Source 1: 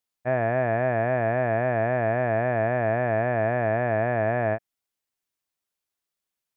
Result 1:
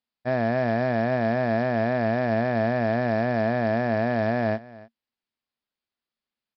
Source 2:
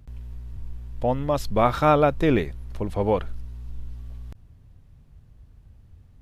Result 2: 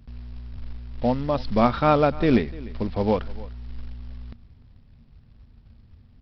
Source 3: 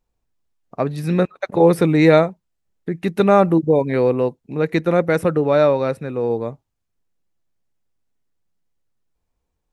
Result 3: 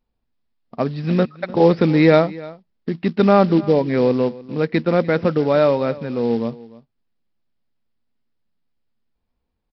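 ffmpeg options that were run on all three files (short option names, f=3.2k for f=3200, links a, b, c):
-af "equalizer=f=230:t=o:w=0.27:g=10.5,aresample=11025,acrusher=bits=6:mode=log:mix=0:aa=0.000001,aresample=44100,aecho=1:1:298:0.1,volume=-1dB"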